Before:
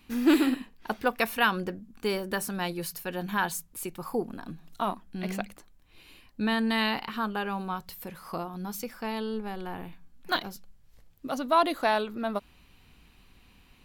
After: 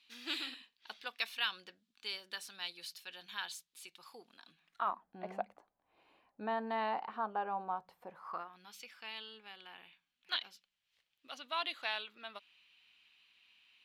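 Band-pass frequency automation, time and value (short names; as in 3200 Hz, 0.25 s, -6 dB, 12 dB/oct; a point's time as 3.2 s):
band-pass, Q 2.3
4.48 s 3700 Hz
5.08 s 750 Hz
8.14 s 750 Hz
8.65 s 3000 Hz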